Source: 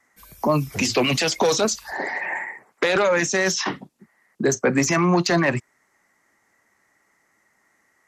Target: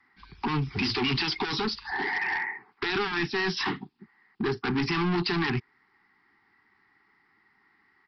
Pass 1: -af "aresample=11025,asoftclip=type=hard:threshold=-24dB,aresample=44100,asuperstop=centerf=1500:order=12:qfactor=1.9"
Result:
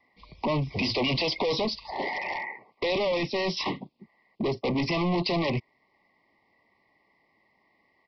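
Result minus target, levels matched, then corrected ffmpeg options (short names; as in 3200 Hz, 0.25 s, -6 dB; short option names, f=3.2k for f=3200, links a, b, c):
500 Hz band +5.0 dB
-af "aresample=11025,asoftclip=type=hard:threshold=-24dB,aresample=44100,asuperstop=centerf=570:order=12:qfactor=1.9"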